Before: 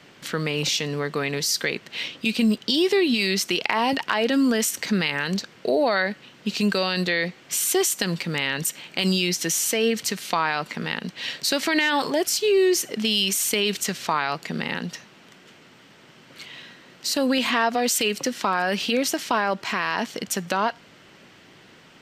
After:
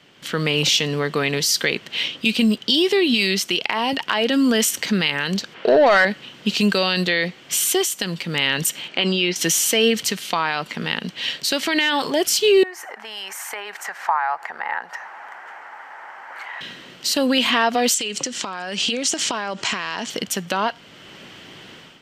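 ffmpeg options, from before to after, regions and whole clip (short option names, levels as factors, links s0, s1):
-filter_complex "[0:a]asettb=1/sr,asplit=3[s0][s1][s2];[s0]atrim=end=5.544[s3];[s1]atrim=start=5.54:end=6.05,asetpts=PTS-STARTPTS,afade=t=in:d=0.004:c=qsin,afade=t=out:st=0.506:d=0.004:c=qsin,bass=f=250:g=-4,treble=f=4000:g=-11,asplit=2[s4][s5];[s5]highpass=f=720:p=1,volume=5.01,asoftclip=type=tanh:threshold=0.266[s6];[s4][s6]amix=inputs=2:normalize=0,lowpass=f=3100:p=1,volume=0.501[s7];[s2]atrim=start=6.046[s8];[s3][s7]acrossfade=d=0.004:c1=hsin:c2=qsin[s9];[s9][s8]acrossfade=d=0.004:c1=qsin:c2=hsin,asettb=1/sr,asplit=3[s10][s11][s12];[s10]atrim=end=8.884[s13];[s11]atrim=start=8.88:end=9.36,asetpts=PTS-STARTPTS,afade=t=in:d=0.004:c=qsin,afade=t=out:st=0.476:d=0.004:c=qsin,highpass=250,lowpass=5300,acrossover=split=2900[s14][s15];[s15]acompressor=threshold=0.0112:ratio=4:attack=1:release=60[s16];[s14][s16]amix=inputs=2:normalize=0[s17];[s12]atrim=start=9.356[s18];[s13][s17]acrossfade=d=0.004:c1=hsin:c2=qsin[s19];[s19][s18]acrossfade=d=0.004:c1=qsin:c2=hsin,asettb=1/sr,asplit=3[s20][s21][s22];[s20]atrim=end=12.634[s23];[s21]atrim=start=12.63:end=16.61,asetpts=PTS-STARTPTS,afade=t=in:d=0.004:c=qsin,afade=t=out:st=3.976:d=0.004:c=qsin,highshelf=f=2400:t=q:w=3:g=-10.5,acompressor=threshold=0.00891:ratio=2:attack=3.2:release=140:knee=1:detection=peak,highpass=f=830:t=q:w=5.4[s24];[s22]atrim=start=16.606[s25];[s23][s24]acrossfade=d=0.004:c1=hsin:c2=qsin[s26];[s26][s25]acrossfade=d=0.004:c1=qsin:c2=hsin,asettb=1/sr,asplit=3[s27][s28][s29];[s27]atrim=end=17.944[s30];[s28]atrim=start=17.94:end=20.1,asetpts=PTS-STARTPTS,afade=t=in:d=0.004:c=qsin,afade=t=out:st=2.156:d=0.004:c=qsin,acompressor=threshold=0.0398:ratio=12:attack=3.2:release=140:knee=1:detection=peak,lowpass=f=7400:t=q:w=3.1[s31];[s29]atrim=start=20.096[s32];[s30][s31]acrossfade=d=0.004:c1=hsin:c2=qsin[s33];[s33][s32]acrossfade=d=0.004:c1=qsin:c2=hsin,equalizer=f=3100:t=o:w=0.32:g=6.5,dynaudnorm=f=120:g=5:m=3.76,volume=0.631"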